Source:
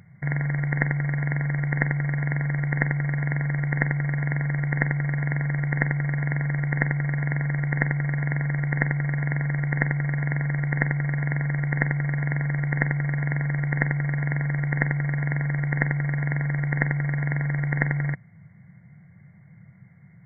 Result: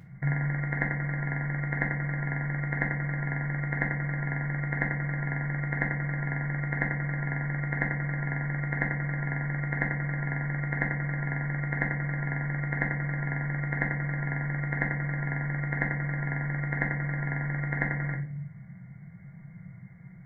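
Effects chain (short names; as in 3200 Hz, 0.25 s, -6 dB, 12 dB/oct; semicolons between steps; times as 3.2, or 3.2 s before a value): in parallel at +2 dB: compressor, threshold -34 dBFS, peak gain reduction 16.5 dB; on the sum: shoebox room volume 50 m³, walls mixed, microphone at 0.56 m; gain -8 dB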